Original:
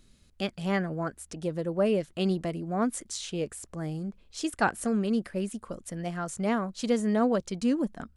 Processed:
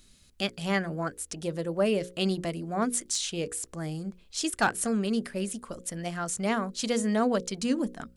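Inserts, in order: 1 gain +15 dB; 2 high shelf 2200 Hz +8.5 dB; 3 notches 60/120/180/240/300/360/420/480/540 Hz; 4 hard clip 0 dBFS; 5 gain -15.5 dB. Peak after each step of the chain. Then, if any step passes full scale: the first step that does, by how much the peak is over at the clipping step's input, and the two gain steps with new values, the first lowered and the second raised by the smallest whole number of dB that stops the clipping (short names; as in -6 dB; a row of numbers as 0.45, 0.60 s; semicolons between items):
+2.5, +6.5, +6.5, 0.0, -15.5 dBFS; step 1, 6.5 dB; step 1 +8 dB, step 5 -8.5 dB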